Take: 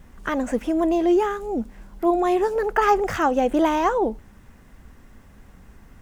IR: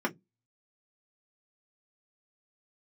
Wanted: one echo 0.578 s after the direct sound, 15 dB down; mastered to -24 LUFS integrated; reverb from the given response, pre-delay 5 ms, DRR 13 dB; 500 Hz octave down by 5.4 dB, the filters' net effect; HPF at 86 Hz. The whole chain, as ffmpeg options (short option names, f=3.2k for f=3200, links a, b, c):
-filter_complex "[0:a]highpass=86,equalizer=f=500:t=o:g=-8,aecho=1:1:578:0.178,asplit=2[a][b];[1:a]atrim=start_sample=2205,adelay=5[c];[b][c]afir=irnorm=-1:irlink=0,volume=-21.5dB[d];[a][d]amix=inputs=2:normalize=0,volume=1dB"